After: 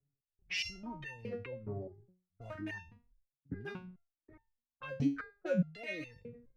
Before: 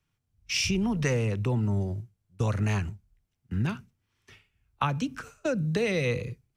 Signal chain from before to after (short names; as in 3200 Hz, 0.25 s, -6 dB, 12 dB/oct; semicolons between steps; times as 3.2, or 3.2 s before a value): Wiener smoothing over 15 samples; graphic EQ 250/500/1000/2000/8000 Hz +3/+4/-8/+5/-8 dB; gate with hold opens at -59 dBFS; in parallel at +2 dB: compressor, threshold -35 dBFS, peak gain reduction 14 dB; on the sum: dynamic EQ 1200 Hz, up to +5 dB, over -39 dBFS, Q 0.9; reverb removal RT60 1.1 s; low-pass opened by the level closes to 680 Hz, open at -20 dBFS; limiter -19 dBFS, peak gain reduction 12 dB; reverse; upward compressor, threshold -34 dBFS; reverse; stepped resonator 4.8 Hz 140–900 Hz; gain +6 dB